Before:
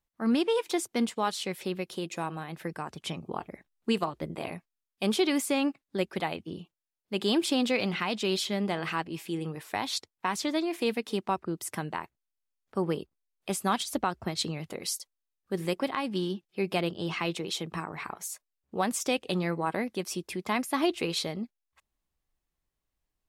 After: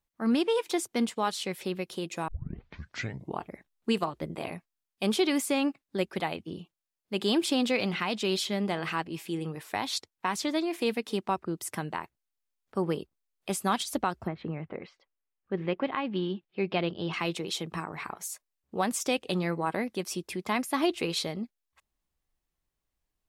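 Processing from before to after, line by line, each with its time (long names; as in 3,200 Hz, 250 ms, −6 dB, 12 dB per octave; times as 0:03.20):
0:02.28: tape start 1.13 s
0:14.26–0:17.12: low-pass filter 1,900 Hz → 4,600 Hz 24 dB per octave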